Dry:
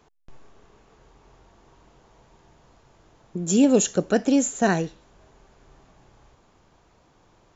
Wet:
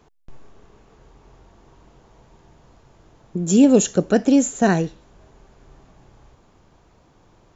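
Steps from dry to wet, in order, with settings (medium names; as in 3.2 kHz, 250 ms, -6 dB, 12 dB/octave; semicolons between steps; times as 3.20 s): bass shelf 450 Hz +5 dB; trim +1 dB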